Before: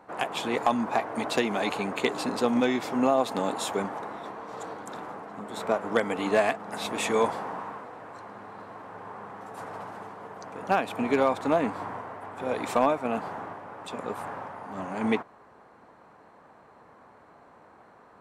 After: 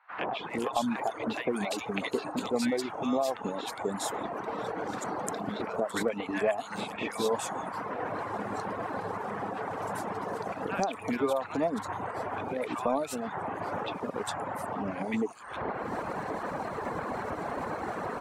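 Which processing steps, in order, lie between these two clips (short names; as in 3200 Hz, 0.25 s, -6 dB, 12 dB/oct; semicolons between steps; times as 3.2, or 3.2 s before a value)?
recorder AGC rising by 72 dB/s; reverb removal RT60 1.2 s; three bands offset in time mids, lows, highs 0.1/0.41 s, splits 1100/3400 Hz; gain -3 dB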